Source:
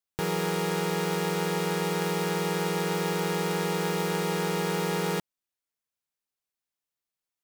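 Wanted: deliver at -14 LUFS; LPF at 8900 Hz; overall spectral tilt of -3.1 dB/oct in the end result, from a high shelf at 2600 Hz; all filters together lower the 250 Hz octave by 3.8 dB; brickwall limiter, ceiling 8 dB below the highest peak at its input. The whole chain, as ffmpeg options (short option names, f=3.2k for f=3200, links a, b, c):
-af "lowpass=8.9k,equalizer=f=250:t=o:g=-7.5,highshelf=f=2.6k:g=7,volume=17.5dB,alimiter=limit=-3dB:level=0:latency=1"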